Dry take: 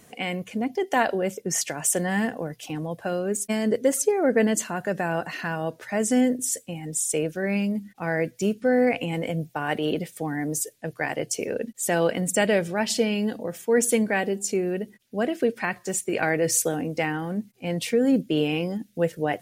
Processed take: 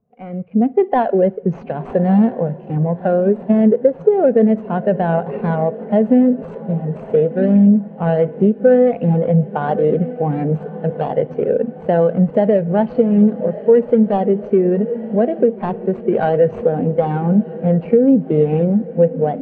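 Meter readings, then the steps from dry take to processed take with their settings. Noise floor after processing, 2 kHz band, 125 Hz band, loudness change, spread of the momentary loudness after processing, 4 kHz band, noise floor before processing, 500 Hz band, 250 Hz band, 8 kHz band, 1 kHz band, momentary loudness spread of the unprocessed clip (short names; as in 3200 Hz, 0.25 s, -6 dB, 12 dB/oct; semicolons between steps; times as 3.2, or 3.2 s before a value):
-35 dBFS, -5.5 dB, +13.5 dB, +9.5 dB, 8 LU, under -10 dB, -55 dBFS, +10.5 dB, +10.5 dB, under -40 dB, +7.5 dB, 9 LU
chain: median filter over 25 samples; LPF 2600 Hz 12 dB/oct; bell 310 Hz -10 dB 0.31 oct; AGC gain up to 9.5 dB; diffused feedback echo 1.18 s, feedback 62%, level -14 dB; compressor 6:1, threshold -17 dBFS, peak gain reduction 8.5 dB; spring tank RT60 1.2 s, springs 53/59 ms, chirp 50 ms, DRR 16 dB; spectral expander 1.5:1; gain +7 dB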